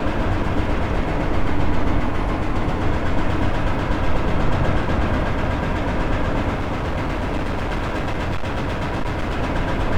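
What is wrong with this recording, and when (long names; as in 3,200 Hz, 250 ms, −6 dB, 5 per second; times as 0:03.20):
0:06.54–0:09.37: clipping −19 dBFS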